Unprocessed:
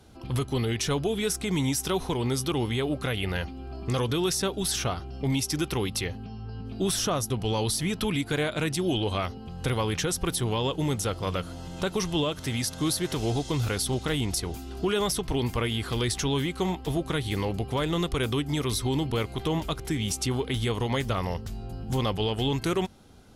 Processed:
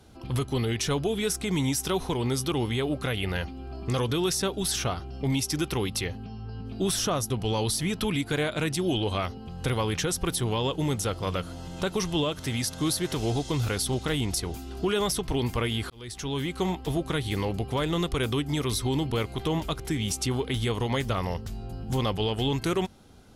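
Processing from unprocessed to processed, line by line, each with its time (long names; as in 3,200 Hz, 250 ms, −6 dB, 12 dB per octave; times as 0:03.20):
0:15.90–0:16.58: fade in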